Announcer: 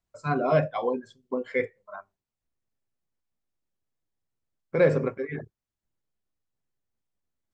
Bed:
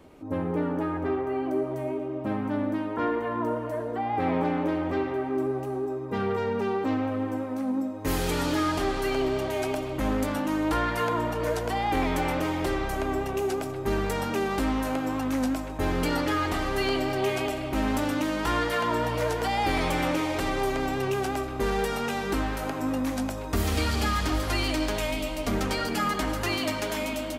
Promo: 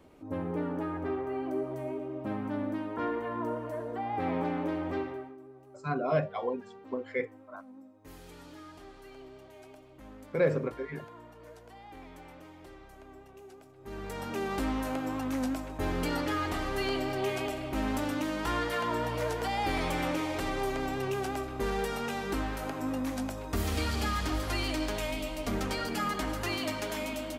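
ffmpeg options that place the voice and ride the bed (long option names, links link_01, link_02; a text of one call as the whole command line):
ffmpeg -i stem1.wav -i stem2.wav -filter_complex "[0:a]adelay=5600,volume=-5.5dB[link_01];[1:a]volume=12.5dB,afade=type=out:start_time=4.97:duration=0.39:silence=0.133352,afade=type=in:start_time=13.77:duration=0.76:silence=0.125893[link_02];[link_01][link_02]amix=inputs=2:normalize=0" out.wav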